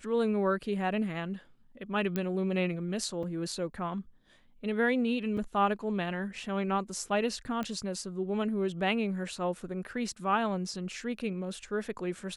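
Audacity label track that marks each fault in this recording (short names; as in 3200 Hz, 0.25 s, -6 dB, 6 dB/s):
2.160000	2.160000	pop -18 dBFS
3.230000	3.230000	gap 3.8 ms
5.370000	5.380000	gap 5.6 ms
7.630000	7.630000	pop -22 dBFS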